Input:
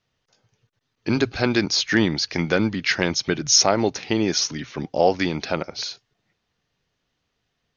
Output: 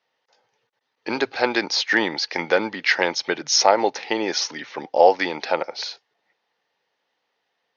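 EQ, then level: speaker cabinet 390–5700 Hz, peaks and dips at 510 Hz +6 dB, 860 Hz +10 dB, 1900 Hz +5 dB; 0.0 dB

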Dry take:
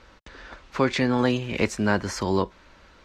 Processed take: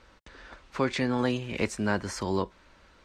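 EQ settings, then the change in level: bell 8800 Hz +6.5 dB 0.29 oct; -5.0 dB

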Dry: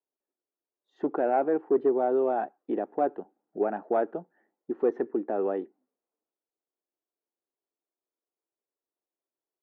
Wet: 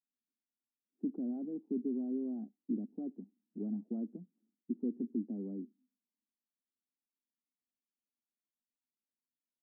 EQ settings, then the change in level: Butterworth band-pass 220 Hz, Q 3.2; +5.0 dB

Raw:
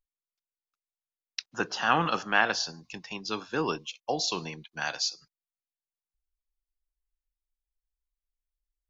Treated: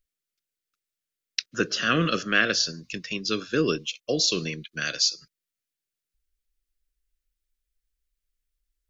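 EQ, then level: Butterworth band-stop 860 Hz, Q 1.1; dynamic EQ 1600 Hz, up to -4 dB, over -38 dBFS, Q 0.86; +7.5 dB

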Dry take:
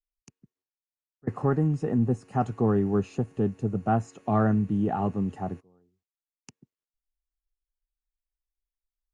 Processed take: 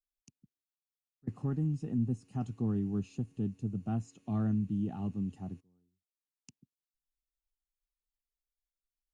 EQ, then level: band shelf 900 Hz -12.5 dB 2.7 oct; -6.5 dB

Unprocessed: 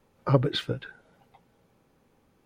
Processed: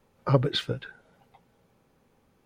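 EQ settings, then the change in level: bell 310 Hz -4 dB 0.21 oct; dynamic EQ 5700 Hz, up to +3 dB, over -46 dBFS, Q 0.75; 0.0 dB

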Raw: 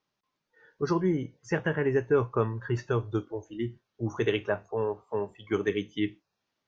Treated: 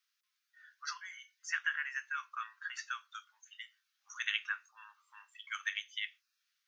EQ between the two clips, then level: steep high-pass 1300 Hz 48 dB/oct; high shelf 5600 Hz +7.5 dB; 0.0 dB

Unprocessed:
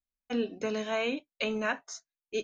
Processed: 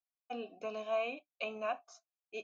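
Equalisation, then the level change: vowel filter a; tone controls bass +9 dB, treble +9 dB; +3.5 dB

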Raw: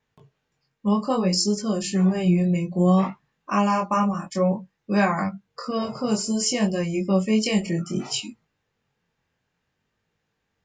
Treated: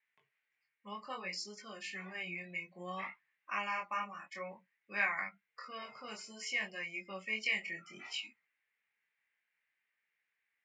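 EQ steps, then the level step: band-pass 2100 Hz, Q 5.2; +3.0 dB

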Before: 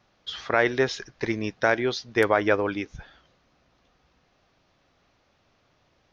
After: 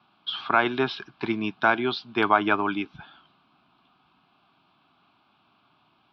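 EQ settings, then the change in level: HPF 58 Hz; three-band isolator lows -21 dB, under 160 Hz, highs -22 dB, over 4100 Hz; fixed phaser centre 1900 Hz, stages 6; +7.0 dB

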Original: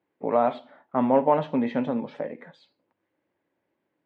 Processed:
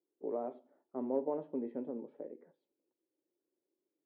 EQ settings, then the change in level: band-pass 370 Hz, Q 4.2; -4.0 dB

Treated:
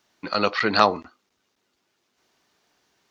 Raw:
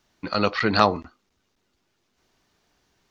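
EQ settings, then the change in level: HPF 300 Hz 6 dB/oct; +1.5 dB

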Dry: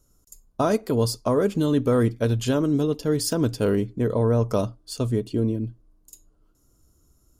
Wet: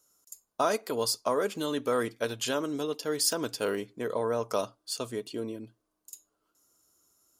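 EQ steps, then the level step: HPF 140 Hz 6 dB/oct; low shelf 200 Hz -10.5 dB; low shelf 430 Hz -12 dB; +1.0 dB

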